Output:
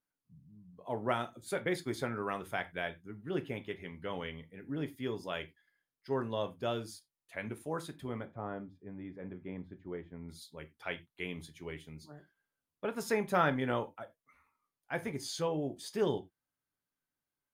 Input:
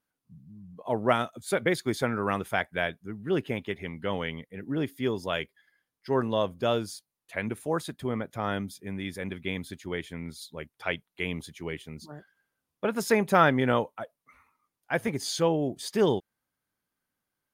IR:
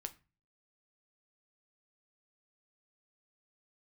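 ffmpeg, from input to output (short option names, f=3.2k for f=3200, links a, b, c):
-filter_complex "[0:a]asettb=1/sr,asplit=3[a][b][c];[a]atrim=end=8.254[d];[b]atrim=start=8.25:end=10.29,asetpts=PTS-STARTPTS,afade=t=in:d=0.004:c=qsin,afade=t=out:st=2.036:d=0.004:c=qsin,lowpass=1.1k[e];[c]atrim=start=10.286[f];[d][e]acrossfade=d=0.004:c1=hsin:c2=qsin[g];[g][f]acrossfade=d=0.004:c1=qsin:c2=hsin[h];[1:a]atrim=start_sample=2205,afade=t=out:st=0.15:d=0.01,atrim=end_sample=7056[i];[h][i]afir=irnorm=-1:irlink=0,volume=-5dB"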